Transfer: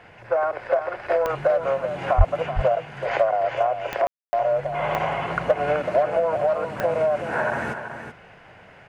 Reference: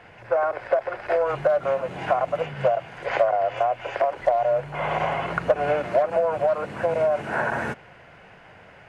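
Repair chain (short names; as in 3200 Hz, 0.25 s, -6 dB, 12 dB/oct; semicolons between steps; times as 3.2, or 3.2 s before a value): de-click; 2.17–2.29 HPF 140 Hz 24 dB/oct; room tone fill 4.07–4.33; inverse comb 0.379 s -9 dB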